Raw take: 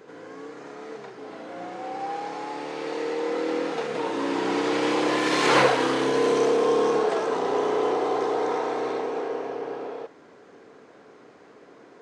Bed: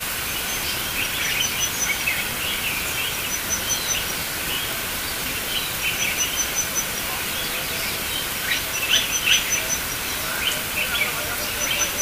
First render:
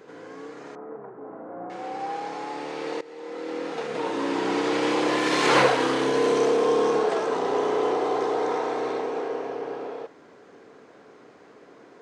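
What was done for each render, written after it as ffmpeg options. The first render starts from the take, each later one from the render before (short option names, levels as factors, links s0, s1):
-filter_complex "[0:a]asettb=1/sr,asplit=3[s0][s1][s2];[s0]atrim=end=0.754[s3];[s1]atrim=start=0.75:end=1.7,asetpts=PTS-STARTPTS,afade=t=in:d=0.004:c=qsin,afade=t=out:st=0.946:d=0.004:c=qsin,lowpass=f=1300:w=0.5412,lowpass=f=1300:w=1.3066[s4];[s2]atrim=start=1.696[s5];[s3][s4]acrossfade=d=0.004:c1=hsin:c2=qsin[s6];[s6][s5]acrossfade=d=0.004:c1=qsin:c2=hsin,asplit=2[s7][s8];[s7]atrim=end=3.01,asetpts=PTS-STARTPTS,afade=t=out:st=3.006:d=0.004:c=hsin:silence=0.112202[s9];[s8]atrim=start=3.01,asetpts=PTS-STARTPTS,afade=t=in:d=1.06:silence=0.112202[s10];[s9][s10]concat=n=2:v=0:a=1"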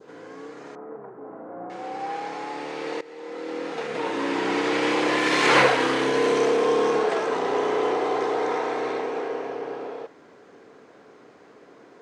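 -af "adynamicequalizer=threshold=0.00891:dfrequency=2100:dqfactor=1.3:tfrequency=2100:tqfactor=1.3:attack=5:release=100:ratio=0.375:range=2.5:mode=boostabove:tftype=bell"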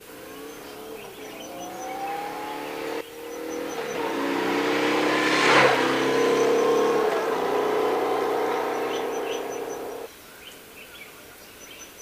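-filter_complex "[1:a]volume=0.0891[s0];[0:a][s0]amix=inputs=2:normalize=0"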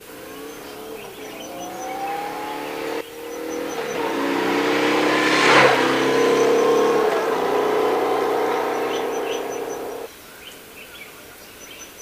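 -af "volume=1.58"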